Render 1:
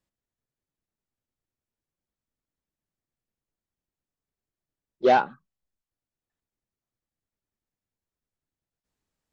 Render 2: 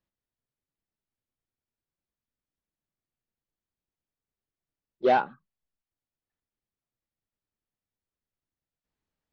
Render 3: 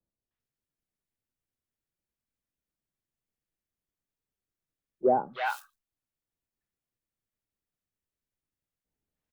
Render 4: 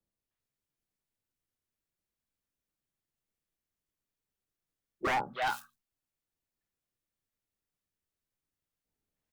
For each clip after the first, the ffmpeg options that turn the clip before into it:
ffmpeg -i in.wav -af "lowpass=4400,volume=-3dB" out.wav
ffmpeg -i in.wav -filter_complex "[0:a]acrossover=split=170|860|2000[link_01][link_02][link_03][link_04];[link_03]acrusher=bits=4:mode=log:mix=0:aa=0.000001[link_05];[link_01][link_02][link_05][link_04]amix=inputs=4:normalize=0,acrossover=split=910|4100[link_06][link_07][link_08];[link_07]adelay=310[link_09];[link_08]adelay=400[link_10];[link_06][link_09][link_10]amix=inputs=3:normalize=0" out.wav
ffmpeg -i in.wav -af "aeval=exprs='0.0631*(abs(mod(val(0)/0.0631+3,4)-2)-1)':channel_layout=same,bandreject=frequency=60:width_type=h:width=6,bandreject=frequency=120:width_type=h:width=6,bandreject=frequency=180:width_type=h:width=6,bandreject=frequency=240:width_type=h:width=6" out.wav

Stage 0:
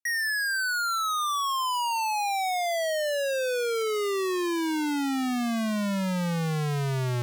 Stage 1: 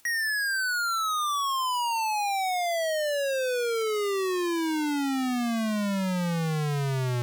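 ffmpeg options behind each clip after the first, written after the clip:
ffmpeg -i in.wav -af "acompressor=mode=upward:threshold=-34dB:ratio=2.5" out.wav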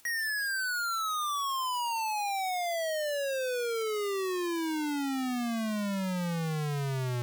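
ffmpeg -i in.wav -af "asoftclip=type=hard:threshold=-31.5dB" out.wav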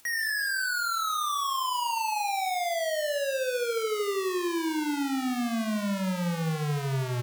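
ffmpeg -i in.wav -af "aecho=1:1:74|148|222|296|370|444:0.398|0.195|0.0956|0.0468|0.023|0.0112,volume=2dB" out.wav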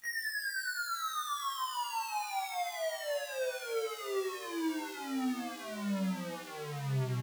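ffmpeg -i in.wav -filter_complex "[0:a]asplit=8[link_01][link_02][link_03][link_04][link_05][link_06][link_07][link_08];[link_02]adelay=448,afreqshift=42,volume=-16dB[link_09];[link_03]adelay=896,afreqshift=84,volume=-19.9dB[link_10];[link_04]adelay=1344,afreqshift=126,volume=-23.8dB[link_11];[link_05]adelay=1792,afreqshift=168,volume=-27.6dB[link_12];[link_06]adelay=2240,afreqshift=210,volume=-31.5dB[link_13];[link_07]adelay=2688,afreqshift=252,volume=-35.4dB[link_14];[link_08]adelay=3136,afreqshift=294,volume=-39.3dB[link_15];[link_01][link_09][link_10][link_11][link_12][link_13][link_14][link_15]amix=inputs=8:normalize=0,afftfilt=real='re*1.73*eq(mod(b,3),0)':imag='im*1.73*eq(mod(b,3),0)':win_size=2048:overlap=0.75,volume=-5.5dB" out.wav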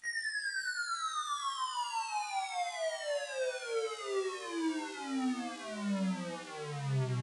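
ffmpeg -i in.wav -af "aresample=22050,aresample=44100" out.wav

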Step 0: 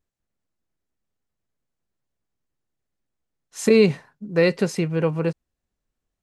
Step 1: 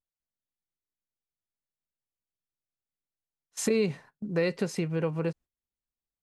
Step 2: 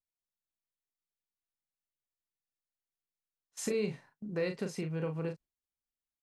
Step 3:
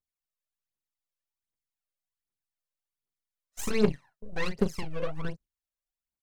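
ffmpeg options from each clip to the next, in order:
ffmpeg -i in.wav -af "agate=range=-17dB:threshold=-41dB:ratio=16:detection=peak,acompressor=threshold=-31dB:ratio=2" out.wav
ffmpeg -i in.wav -filter_complex "[0:a]asplit=2[link_01][link_02];[link_02]adelay=38,volume=-6.5dB[link_03];[link_01][link_03]amix=inputs=2:normalize=0,volume=-7.5dB" out.wav
ffmpeg -i in.wav -af "aeval=exprs='0.0891*(cos(1*acos(clip(val(0)/0.0891,-1,1)))-cos(1*PI/2))+0.00631*(cos(7*acos(clip(val(0)/0.0891,-1,1)))-cos(7*PI/2))+0.0112*(cos(8*acos(clip(val(0)/0.0891,-1,1)))-cos(8*PI/2))':channel_layout=same,aphaser=in_gain=1:out_gain=1:delay=2:decay=0.76:speed=1.3:type=triangular" out.wav

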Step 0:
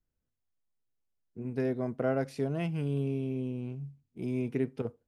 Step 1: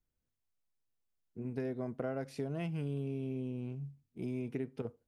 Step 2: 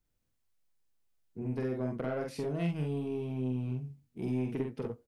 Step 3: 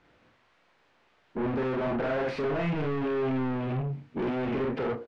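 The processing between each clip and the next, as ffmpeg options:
ffmpeg -i in.wav -af "acompressor=threshold=-32dB:ratio=4,volume=-2dB" out.wav
ffmpeg -i in.wav -filter_complex "[0:a]asoftclip=type=tanh:threshold=-30.5dB,asplit=2[link_01][link_02];[link_02]aecho=0:1:47|64:0.708|0.251[link_03];[link_01][link_03]amix=inputs=2:normalize=0,volume=3.5dB" out.wav
ffmpeg -i in.wav -filter_complex "[0:a]asplit=2[link_01][link_02];[link_02]highpass=frequency=720:poles=1,volume=38dB,asoftclip=type=tanh:threshold=-23dB[link_03];[link_01][link_03]amix=inputs=2:normalize=0,lowpass=frequency=2100:poles=1,volume=-6dB,lowpass=2800,asplit=2[link_04][link_05];[link_05]adelay=30,volume=-10.5dB[link_06];[link_04][link_06]amix=inputs=2:normalize=0" out.wav

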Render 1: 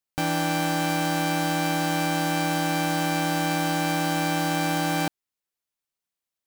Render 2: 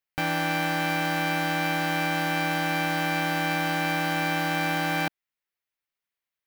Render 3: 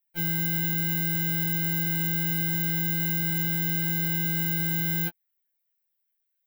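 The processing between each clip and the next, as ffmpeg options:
ffmpeg -i in.wav -af "equalizer=frequency=250:width_type=o:width=1:gain=-3,equalizer=frequency=2000:width_type=o:width=1:gain=7,equalizer=frequency=8000:width_type=o:width=1:gain=-7,volume=-2dB" out.wav
ffmpeg -i in.wav -af "aexciter=amount=7.6:drive=4.1:freq=12000,asuperstop=centerf=1100:order=4:qfactor=2.9,afftfilt=real='re*2.83*eq(mod(b,8),0)':imag='im*2.83*eq(mod(b,8),0)':win_size=2048:overlap=0.75,volume=-1dB" out.wav

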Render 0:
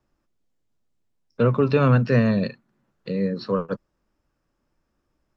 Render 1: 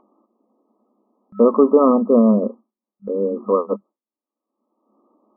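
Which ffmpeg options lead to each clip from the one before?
ffmpeg -i in.wav -af "agate=range=-33dB:threshold=-40dB:ratio=3:detection=peak,afftfilt=real='re*between(b*sr/4096,200,1300)':imag='im*between(b*sr/4096,200,1300)':win_size=4096:overlap=0.75,acompressor=mode=upward:threshold=-36dB:ratio=2.5,volume=7.5dB" out.wav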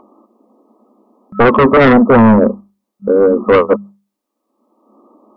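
ffmpeg -i in.wav -af "acontrast=20,aeval=exprs='1*sin(PI/2*2.51*val(0)/1)':channel_layout=same,bandreject=frequency=50:width_type=h:width=6,bandreject=frequency=100:width_type=h:width=6,bandreject=frequency=150:width_type=h:width=6,bandreject=frequency=200:width_type=h:width=6,volume=-3.5dB" out.wav

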